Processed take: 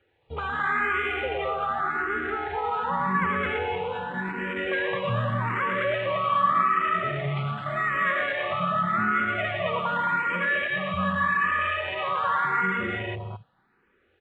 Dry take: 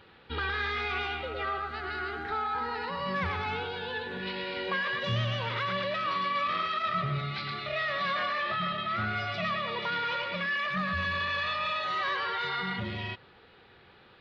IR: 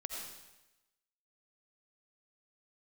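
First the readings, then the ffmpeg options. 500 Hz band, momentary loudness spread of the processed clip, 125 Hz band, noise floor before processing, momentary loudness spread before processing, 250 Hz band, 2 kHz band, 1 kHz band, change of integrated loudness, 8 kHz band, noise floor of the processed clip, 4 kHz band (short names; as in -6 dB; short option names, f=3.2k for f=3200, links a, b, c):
+6.5 dB, 7 LU, +3.5 dB, -57 dBFS, 5 LU, +6.5 dB, +5.5 dB, +6.5 dB, +5.5 dB, n/a, -67 dBFS, -4.0 dB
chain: -filter_complex "[0:a]lowpass=2.4k,aecho=1:1:215.7|274.1:0.794|0.251,afwtdn=0.0126,acrossover=split=130|1400[a][b][c];[a]acompressor=threshold=-46dB:ratio=6[d];[d][b][c]amix=inputs=3:normalize=0,asplit=2[e][f];[f]afreqshift=0.85[g];[e][g]amix=inputs=2:normalize=1,volume=7.5dB"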